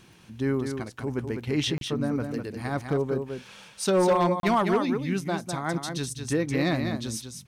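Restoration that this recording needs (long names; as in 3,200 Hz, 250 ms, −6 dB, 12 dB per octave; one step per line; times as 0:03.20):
clipped peaks rebuilt −16 dBFS
click removal
repair the gap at 0:01.78/0:04.40, 32 ms
echo removal 202 ms −6.5 dB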